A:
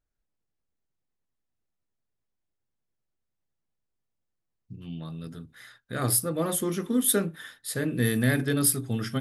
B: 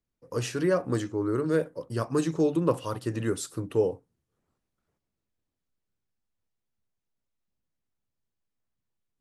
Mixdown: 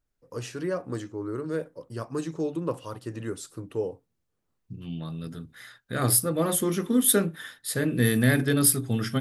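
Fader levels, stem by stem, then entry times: +2.5 dB, -5.0 dB; 0.00 s, 0.00 s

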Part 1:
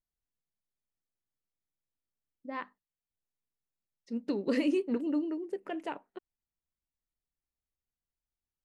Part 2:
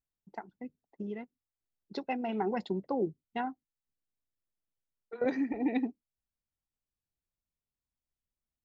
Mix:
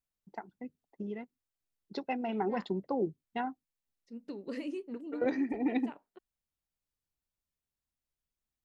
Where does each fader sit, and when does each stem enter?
-10.0 dB, -0.5 dB; 0.00 s, 0.00 s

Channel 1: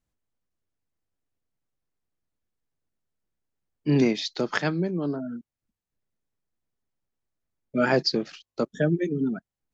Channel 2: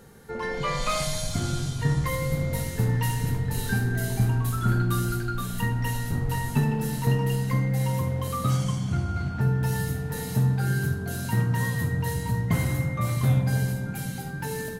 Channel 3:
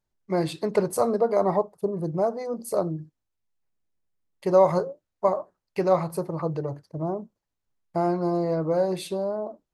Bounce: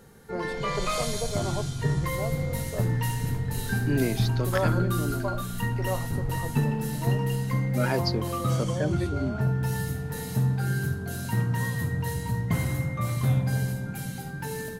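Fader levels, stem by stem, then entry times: -5.5 dB, -2.0 dB, -11.0 dB; 0.00 s, 0.00 s, 0.00 s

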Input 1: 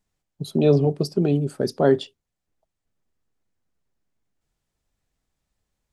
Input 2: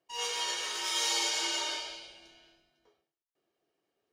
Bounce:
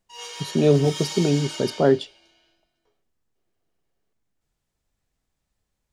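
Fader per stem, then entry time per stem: 0.0 dB, -3.0 dB; 0.00 s, 0.00 s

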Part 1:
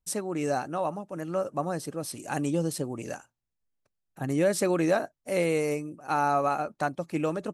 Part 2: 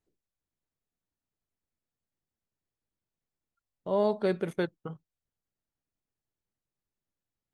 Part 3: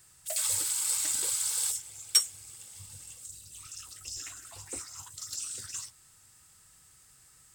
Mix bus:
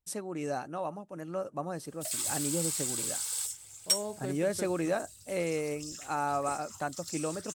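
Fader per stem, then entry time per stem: -6.0 dB, -11.5 dB, -4.0 dB; 0.00 s, 0.00 s, 1.75 s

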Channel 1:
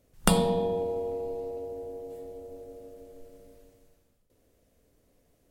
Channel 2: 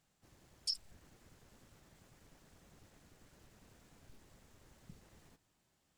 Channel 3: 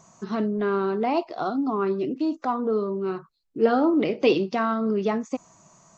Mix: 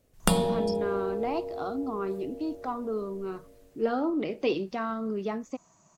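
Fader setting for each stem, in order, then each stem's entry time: -1.0 dB, -6.0 dB, -7.5 dB; 0.00 s, 0.00 s, 0.20 s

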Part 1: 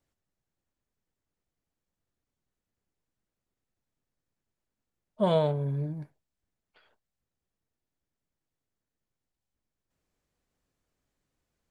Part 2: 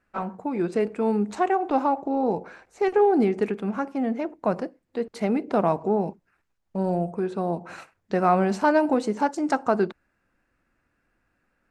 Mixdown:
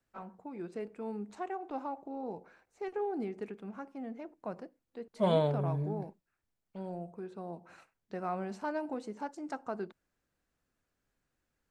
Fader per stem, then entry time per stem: -3.0 dB, -16.0 dB; 0.00 s, 0.00 s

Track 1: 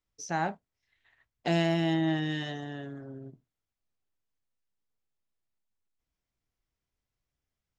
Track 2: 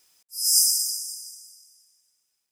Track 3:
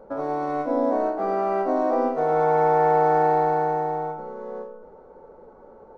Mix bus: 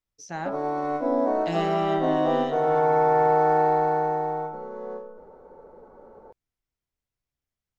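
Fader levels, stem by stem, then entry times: -3.0 dB, mute, -1.0 dB; 0.00 s, mute, 0.35 s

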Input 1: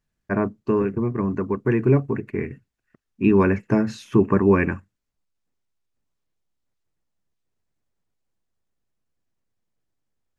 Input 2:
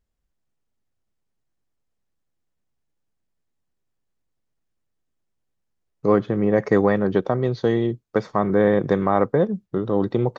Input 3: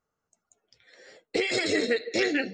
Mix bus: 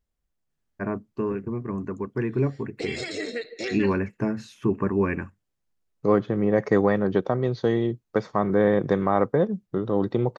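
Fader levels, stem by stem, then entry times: -6.5 dB, -2.5 dB, -6.0 dB; 0.50 s, 0.00 s, 1.45 s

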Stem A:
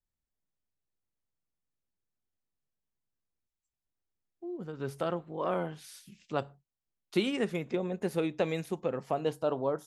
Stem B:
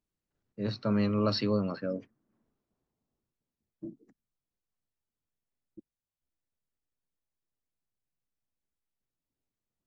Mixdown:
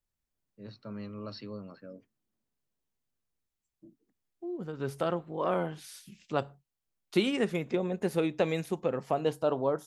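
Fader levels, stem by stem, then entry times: +2.0 dB, -13.5 dB; 0.00 s, 0.00 s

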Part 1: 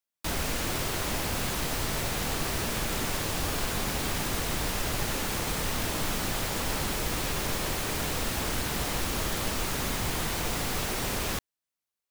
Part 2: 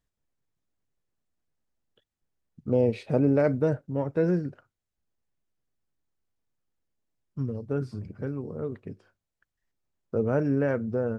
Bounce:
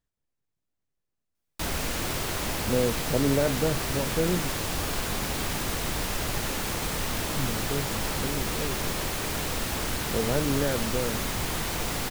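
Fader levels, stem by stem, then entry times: +0.5 dB, -2.5 dB; 1.35 s, 0.00 s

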